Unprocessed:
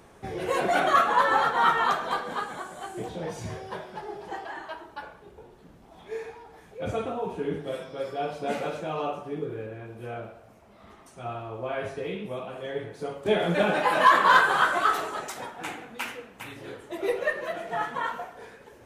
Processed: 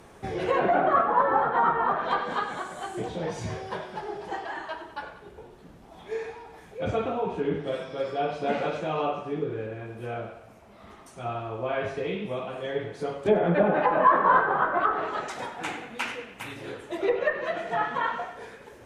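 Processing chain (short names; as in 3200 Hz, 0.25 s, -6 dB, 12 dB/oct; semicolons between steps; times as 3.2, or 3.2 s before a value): 13.94–15.39 high shelf 6300 Hz -10.5 dB; treble ducked by the level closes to 1000 Hz, closed at -19.5 dBFS; narrowing echo 96 ms, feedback 57%, band-pass 2300 Hz, level -11 dB; gain +2.5 dB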